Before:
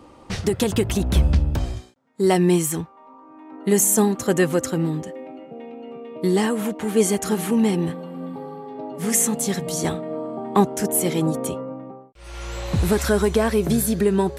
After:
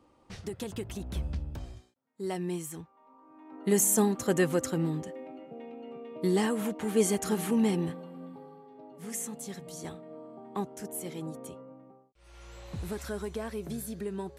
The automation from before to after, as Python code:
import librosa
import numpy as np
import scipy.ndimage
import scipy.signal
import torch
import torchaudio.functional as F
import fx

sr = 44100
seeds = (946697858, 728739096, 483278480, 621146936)

y = fx.gain(x, sr, db=fx.line((2.72, -16.5), (3.59, -7.0), (7.74, -7.0), (8.7, -17.0)))